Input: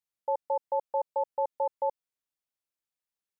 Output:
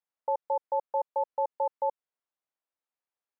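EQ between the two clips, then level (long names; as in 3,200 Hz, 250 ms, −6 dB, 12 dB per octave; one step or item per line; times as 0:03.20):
dynamic equaliser 680 Hz, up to −4 dB, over −40 dBFS, Q 1.2
resonant band-pass 810 Hz, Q 0.81
+4.0 dB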